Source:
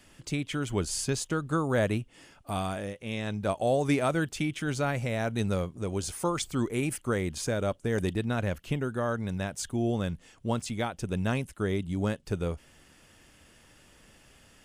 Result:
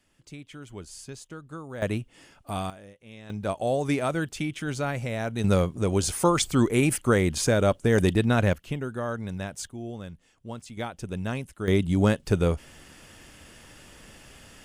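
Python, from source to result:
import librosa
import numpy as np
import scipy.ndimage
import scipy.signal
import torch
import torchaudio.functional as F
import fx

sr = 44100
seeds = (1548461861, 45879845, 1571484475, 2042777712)

y = fx.gain(x, sr, db=fx.steps((0.0, -11.5), (1.82, 0.5), (2.7, -12.0), (3.3, 0.0), (5.44, 7.5), (8.53, -1.0), (9.67, -8.5), (10.77, -2.0), (11.68, 8.0)))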